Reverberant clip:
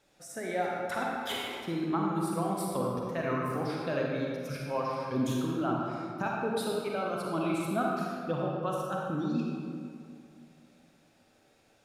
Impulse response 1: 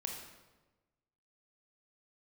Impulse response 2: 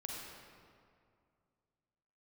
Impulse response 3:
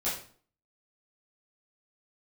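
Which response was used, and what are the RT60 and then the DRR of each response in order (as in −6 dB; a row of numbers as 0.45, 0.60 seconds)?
2; 1.2, 2.3, 0.50 seconds; 1.0, −2.5, −10.5 decibels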